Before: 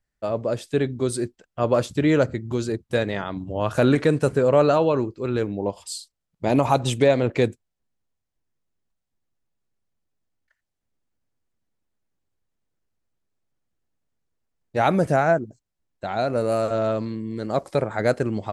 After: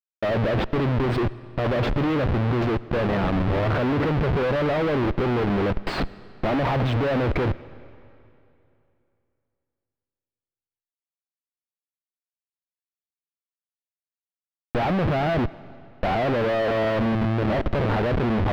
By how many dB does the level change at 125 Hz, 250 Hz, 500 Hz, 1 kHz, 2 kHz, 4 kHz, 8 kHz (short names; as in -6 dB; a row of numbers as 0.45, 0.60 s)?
+3.0 dB, +0.5 dB, -3.0 dB, -0.5 dB, +1.5 dB, +0.5 dB, under -15 dB